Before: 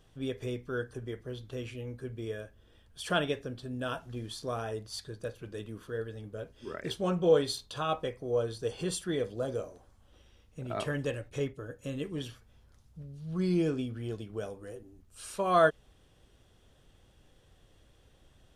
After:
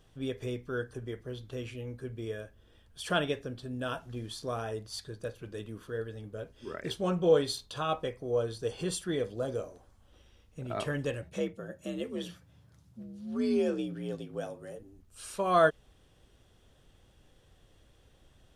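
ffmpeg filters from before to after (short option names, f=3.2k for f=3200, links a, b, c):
-filter_complex "[0:a]asettb=1/sr,asplit=3[a][b][c];[a]atrim=end=11.224[d];[b]atrim=start=11.22:end=14.79,asetpts=PTS-STARTPTS,afade=t=in:d=0.004:c=qsin,afade=t=out:st=3.566:d=0.004:c=qsin,afreqshift=59[e];[c]atrim=start=14.786[f];[d][e]acrossfade=d=0.004:c1=hsin:c2=qsin[g];[g][f]acrossfade=d=0.004:c1=qsin:c2=hsin"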